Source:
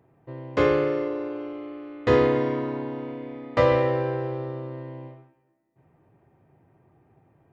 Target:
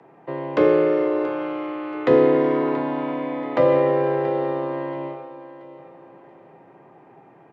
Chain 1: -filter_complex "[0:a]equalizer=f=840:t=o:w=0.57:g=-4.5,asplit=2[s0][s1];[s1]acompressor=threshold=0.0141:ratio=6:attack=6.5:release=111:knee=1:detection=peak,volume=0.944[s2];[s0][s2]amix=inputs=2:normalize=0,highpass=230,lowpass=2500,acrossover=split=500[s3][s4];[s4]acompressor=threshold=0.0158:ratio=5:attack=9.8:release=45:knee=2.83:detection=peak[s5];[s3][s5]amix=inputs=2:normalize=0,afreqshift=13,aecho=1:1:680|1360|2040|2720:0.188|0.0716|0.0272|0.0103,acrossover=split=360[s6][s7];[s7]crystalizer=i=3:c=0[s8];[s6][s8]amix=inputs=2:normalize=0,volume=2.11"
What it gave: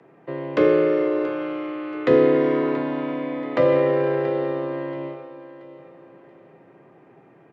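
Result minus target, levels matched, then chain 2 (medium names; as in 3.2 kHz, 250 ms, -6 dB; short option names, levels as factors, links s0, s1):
1 kHz band -3.5 dB
-filter_complex "[0:a]equalizer=f=840:t=o:w=0.57:g=4,asplit=2[s0][s1];[s1]acompressor=threshold=0.0141:ratio=6:attack=6.5:release=111:knee=1:detection=peak,volume=0.944[s2];[s0][s2]amix=inputs=2:normalize=0,highpass=230,lowpass=2500,acrossover=split=500[s3][s4];[s4]acompressor=threshold=0.0158:ratio=5:attack=9.8:release=45:knee=2.83:detection=peak[s5];[s3][s5]amix=inputs=2:normalize=0,afreqshift=13,aecho=1:1:680|1360|2040|2720:0.188|0.0716|0.0272|0.0103,acrossover=split=360[s6][s7];[s7]crystalizer=i=3:c=0[s8];[s6][s8]amix=inputs=2:normalize=0,volume=2.11"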